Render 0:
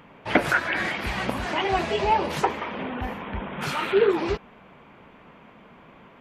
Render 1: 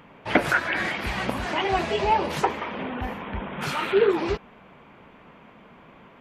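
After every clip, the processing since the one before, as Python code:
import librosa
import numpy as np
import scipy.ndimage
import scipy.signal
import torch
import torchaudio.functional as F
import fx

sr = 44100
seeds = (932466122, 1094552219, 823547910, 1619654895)

y = x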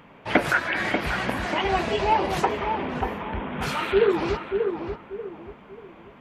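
y = fx.echo_filtered(x, sr, ms=587, feedback_pct=34, hz=1300.0, wet_db=-5)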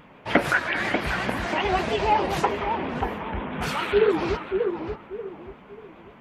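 y = fx.vibrato(x, sr, rate_hz=7.4, depth_cents=86.0)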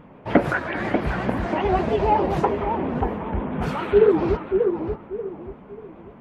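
y = fx.tilt_shelf(x, sr, db=8.5, hz=1400.0)
y = y * librosa.db_to_amplitude(-2.5)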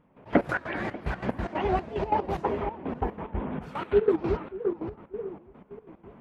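y = fx.step_gate(x, sr, bpm=184, pattern='..x.x.x.xxx', floor_db=-12.0, edge_ms=4.5)
y = y * librosa.db_to_amplitude(-5.0)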